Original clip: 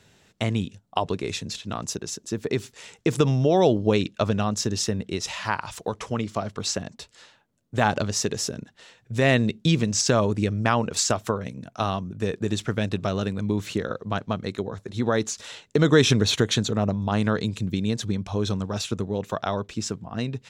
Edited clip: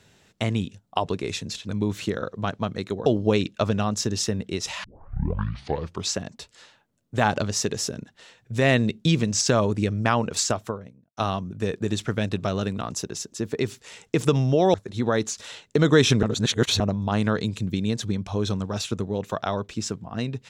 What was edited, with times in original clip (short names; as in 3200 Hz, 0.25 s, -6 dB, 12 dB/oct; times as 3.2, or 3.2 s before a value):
1.69–3.66 swap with 13.37–14.74
5.44 tape start 1.27 s
10.95–11.77 studio fade out
16.23–16.8 reverse